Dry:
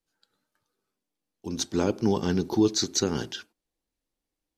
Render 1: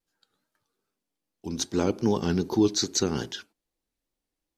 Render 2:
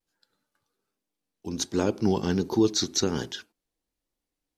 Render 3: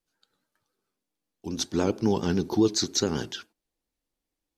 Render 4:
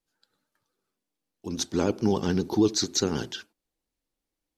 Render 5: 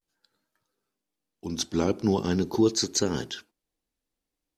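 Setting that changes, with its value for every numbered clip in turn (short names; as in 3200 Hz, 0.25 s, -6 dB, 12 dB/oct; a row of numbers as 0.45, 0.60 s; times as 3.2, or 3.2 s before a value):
vibrato, rate: 2.5, 1.3, 7.3, 13, 0.43 Hz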